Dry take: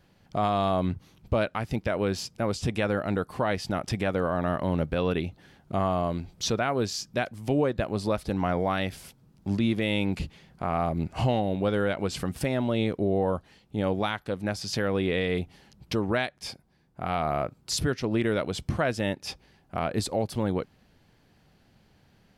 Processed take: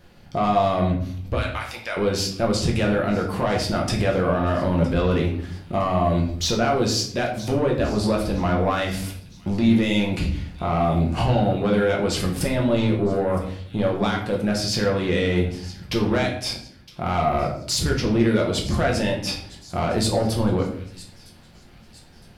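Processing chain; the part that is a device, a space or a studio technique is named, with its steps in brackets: 1.35–1.97 s: Bessel high-pass 1.5 kHz, order 2; feedback echo behind a high-pass 962 ms, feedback 44%, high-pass 3.2 kHz, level -17.5 dB; soft clipper into limiter (saturation -19.5 dBFS, distortion -17 dB; peak limiter -24.5 dBFS, peak gain reduction 4.5 dB); simulated room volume 89 m³, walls mixed, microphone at 0.86 m; trim +7 dB

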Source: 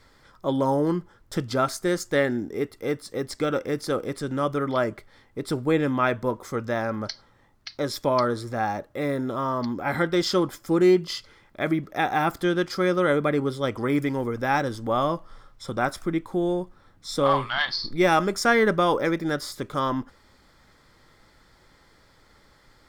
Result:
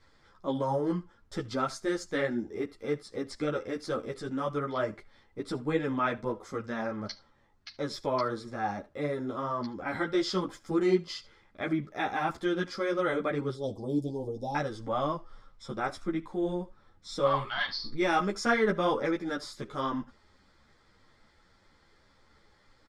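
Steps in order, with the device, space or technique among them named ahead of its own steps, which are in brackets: 13.54–14.55 s: Chebyshev band-stop 780–3900 Hz, order 3; delay 74 ms -21 dB; string-machine ensemble chorus (three-phase chorus; low-pass 7.4 kHz 12 dB/octave); trim -3.5 dB

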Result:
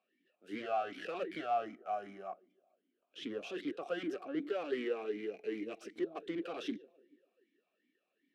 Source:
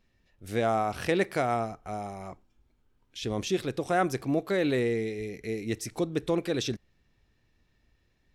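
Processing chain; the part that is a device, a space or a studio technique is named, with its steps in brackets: Chebyshev high-pass 180 Hz, order 5; tape echo 145 ms, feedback 60%, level -21 dB, low-pass 1.2 kHz; talk box (valve stage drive 35 dB, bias 0.75; talking filter a-i 2.6 Hz); trim +10.5 dB

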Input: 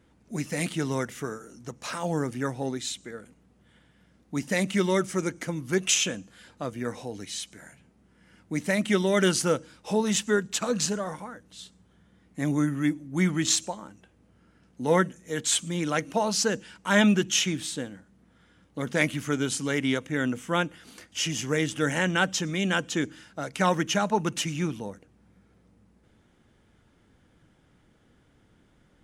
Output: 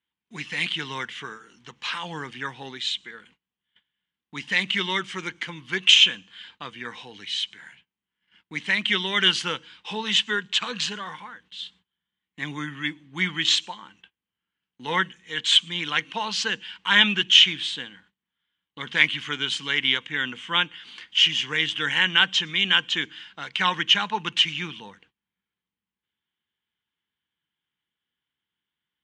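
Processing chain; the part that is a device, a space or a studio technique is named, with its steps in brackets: car door speaker (cabinet simulation 86–8200 Hz, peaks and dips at 110 Hz -6 dB, 270 Hz -4 dB, 600 Hz -9 dB, 1.3 kHz -8 dB, 3.1 kHz +9 dB); gate -56 dBFS, range -24 dB; high-order bell 2 kHz +14.5 dB 2.5 oct; trim -7 dB

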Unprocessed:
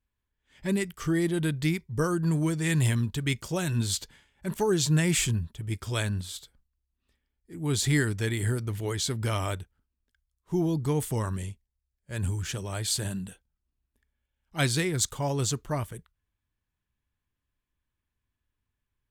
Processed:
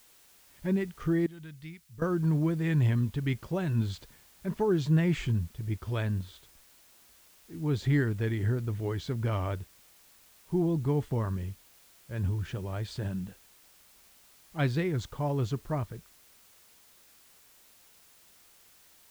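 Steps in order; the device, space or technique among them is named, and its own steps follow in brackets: cassette deck with a dirty head (tape spacing loss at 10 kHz 33 dB; wow and flutter; white noise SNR 28 dB); 1.26–2.02 s: amplifier tone stack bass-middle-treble 5-5-5

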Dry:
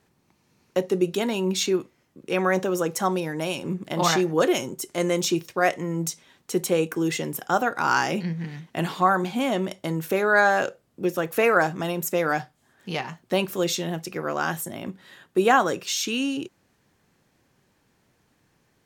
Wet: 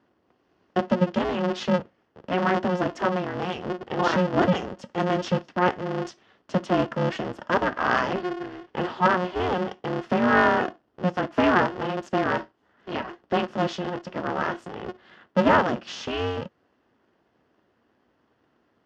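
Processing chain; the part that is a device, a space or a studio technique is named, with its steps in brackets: ring modulator pedal into a guitar cabinet (polarity switched at an audio rate 180 Hz; cabinet simulation 110–4100 Hz, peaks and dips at 230 Hz +6 dB, 2.3 kHz -9 dB, 3.9 kHz -10 dB)

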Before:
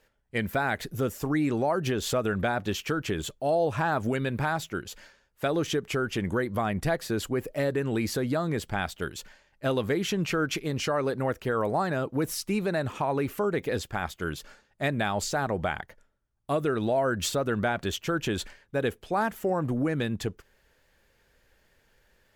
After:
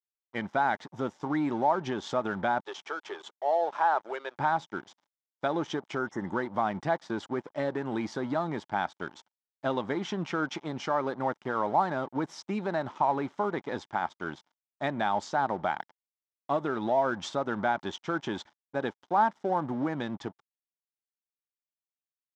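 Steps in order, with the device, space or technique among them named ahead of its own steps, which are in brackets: 2.60–4.39 s: elliptic high-pass 390 Hz, stop band 60 dB; blown loudspeaker (crossover distortion -43 dBFS; cabinet simulation 200–5200 Hz, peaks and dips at 460 Hz -8 dB, 880 Hz +9 dB, 1.8 kHz -3 dB, 2.6 kHz -10 dB, 4.4 kHz -9 dB); 6.01–6.27 s: spectral replace 2.1–5.2 kHz after

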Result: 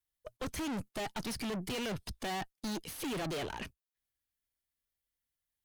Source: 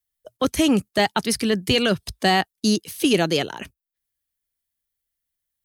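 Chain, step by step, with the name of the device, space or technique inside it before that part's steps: tube preamp driven hard (valve stage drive 35 dB, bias 0.65; treble shelf 4.9 kHz -5 dB)

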